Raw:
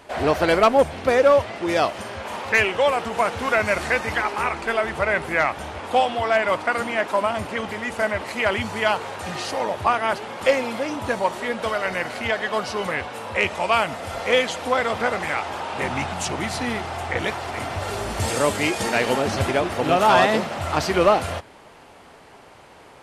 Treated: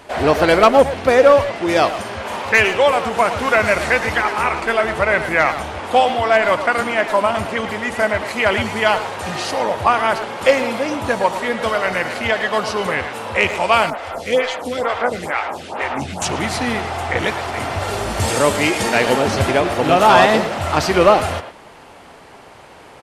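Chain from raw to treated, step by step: speakerphone echo 110 ms, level -9 dB; 13.90–16.22 s: lamp-driven phase shifter 2.2 Hz; trim +5 dB

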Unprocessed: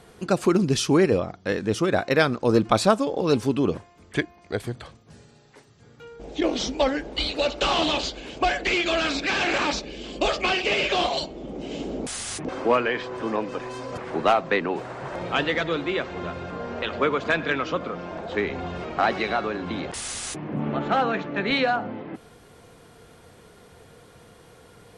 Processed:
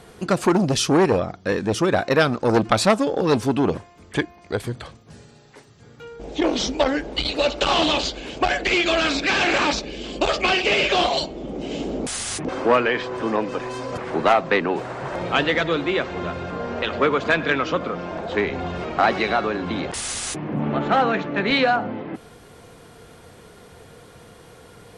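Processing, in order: transformer saturation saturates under 1.2 kHz; trim +4.5 dB

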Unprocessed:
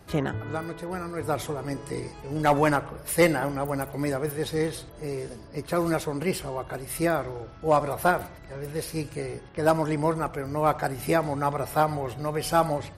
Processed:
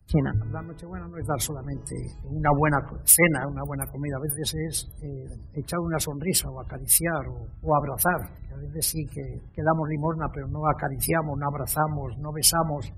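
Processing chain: spectral gate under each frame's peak -25 dB strong; tone controls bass +14 dB, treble +12 dB; harmonic-percussive split harmonic -6 dB; dynamic bell 2 kHz, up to +4 dB, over -36 dBFS, Q 0.72; in parallel at +3 dB: compression, threshold -30 dBFS, peak gain reduction 15 dB; on the sum: three bands expanded up and down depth 100%; trim -6.5 dB

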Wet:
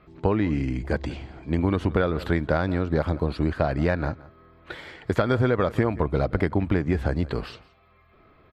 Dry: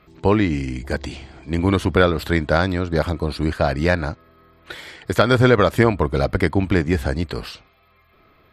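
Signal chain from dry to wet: low-pass 1.7 kHz 6 dB/octave; on a send: delay 171 ms -22 dB; on the sum: compression, threshold -18 dBFS, peak gain reduction 8.5 dB

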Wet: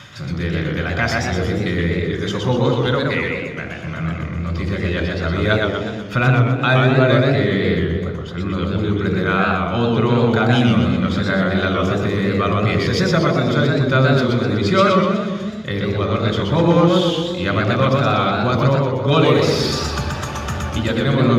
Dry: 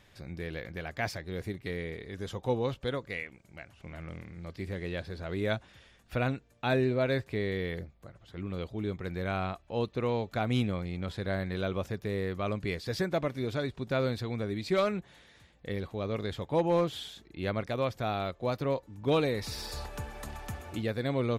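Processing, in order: treble shelf 8.5 kHz -6.5 dB; reverberation RT60 1.2 s, pre-delay 3 ms, DRR 7 dB; in parallel at 0 dB: compression, threshold -28 dBFS, peak gain reduction 13 dB; on the sum: bass shelf 63 Hz -12 dB; reverse; upward compressor, threshold -28 dBFS; reverse; modulated delay 123 ms, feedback 51%, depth 144 cents, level -3 dB; trim +3.5 dB

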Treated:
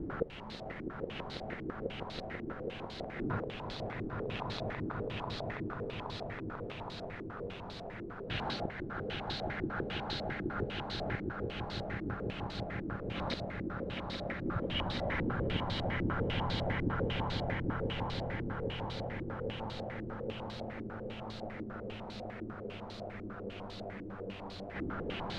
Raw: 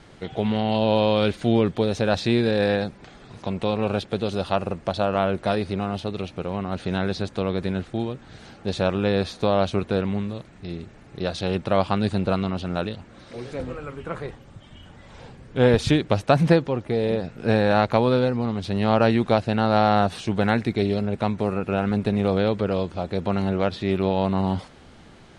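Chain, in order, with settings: peak limiter -15.5 dBFS, peak gain reduction 11 dB; inverted gate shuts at -30 dBFS, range -35 dB; on a send: echo with a slow build-up 164 ms, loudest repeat 8, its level -5 dB; on the sum: added noise pink -57 dBFS; step-sequenced low-pass 10 Hz 330–4100 Hz; trim +5.5 dB

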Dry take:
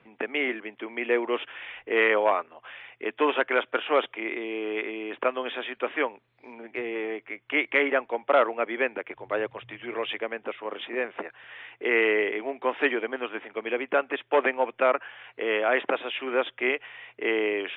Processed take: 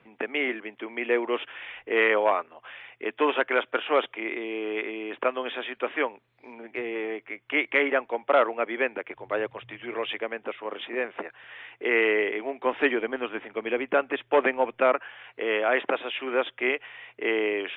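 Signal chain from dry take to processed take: 12.66–14.95 s: bass shelf 170 Hz +10.5 dB

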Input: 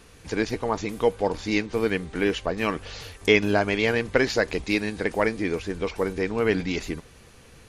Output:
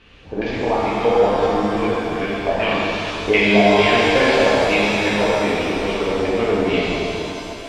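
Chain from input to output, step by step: 1.85–2.36 s: compression, threshold -27 dBFS, peak gain reduction 8.5 dB; LFO low-pass square 2.4 Hz 750–3000 Hz; pitch-shifted reverb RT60 2.9 s, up +7 st, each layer -8 dB, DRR -8 dB; trim -3.5 dB

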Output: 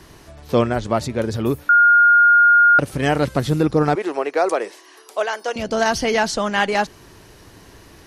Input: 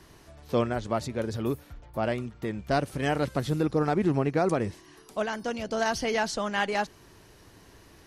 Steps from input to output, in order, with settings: 1.69–2.79 s: bleep 1.42 kHz -17 dBFS; 3.95–5.56 s: high-pass 410 Hz 24 dB/octave; trim +8.5 dB

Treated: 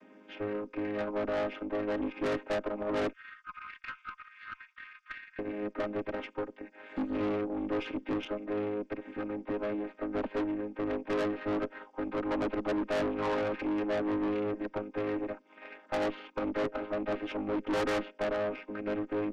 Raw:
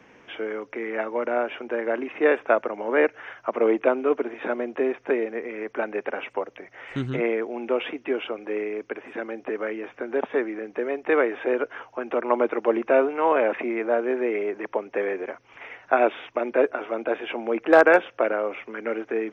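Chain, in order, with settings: vocoder on a held chord major triad, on G#3; 3.13–5.39 s: steep high-pass 1.1 kHz 96 dB/octave; dynamic bell 2.8 kHz, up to +4 dB, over -53 dBFS, Q 3.7; valve stage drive 28 dB, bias 0.45

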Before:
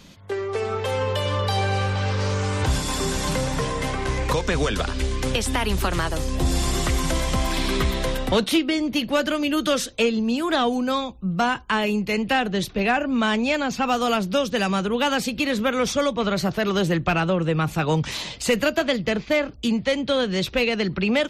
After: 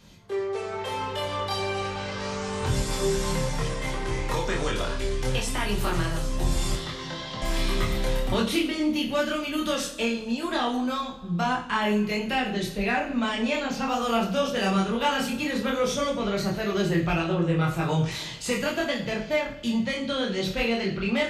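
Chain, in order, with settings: chorus voices 2, 0.17 Hz, delay 25 ms, depth 1.3 ms; 6.75–7.42 s: cabinet simulation 190–4700 Hz, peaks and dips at 230 Hz -8 dB, 370 Hz -9 dB, 640 Hz -9 dB, 1.2 kHz -6 dB, 2.4 kHz -10 dB, 3.7 kHz +4 dB; two-slope reverb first 0.45 s, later 1.9 s, DRR 1 dB; trim -3.5 dB

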